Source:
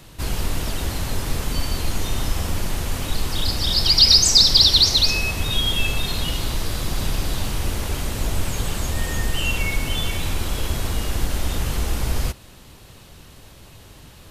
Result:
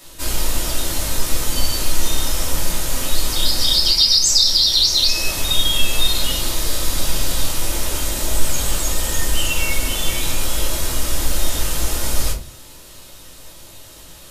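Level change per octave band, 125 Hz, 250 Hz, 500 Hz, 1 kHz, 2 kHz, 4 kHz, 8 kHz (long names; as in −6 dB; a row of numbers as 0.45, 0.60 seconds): −3.0, −0.5, +2.0, +2.0, +1.0, +1.0, +6.0 decibels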